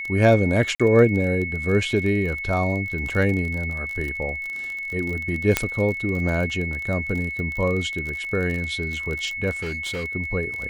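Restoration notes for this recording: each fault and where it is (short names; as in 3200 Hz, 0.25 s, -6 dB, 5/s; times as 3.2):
crackle 28/s -27 dBFS
tone 2200 Hz -28 dBFS
0.75–0.8 gap 46 ms
5.57 pop -2 dBFS
9.62–10.05 clipped -25 dBFS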